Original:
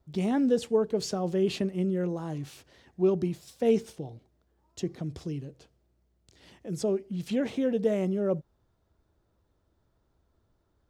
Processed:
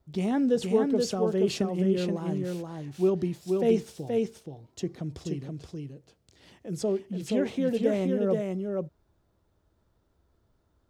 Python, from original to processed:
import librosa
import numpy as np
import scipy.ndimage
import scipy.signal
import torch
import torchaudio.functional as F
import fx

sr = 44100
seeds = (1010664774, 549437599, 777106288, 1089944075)

y = x + 10.0 ** (-3.5 / 20.0) * np.pad(x, (int(476 * sr / 1000.0), 0))[:len(x)]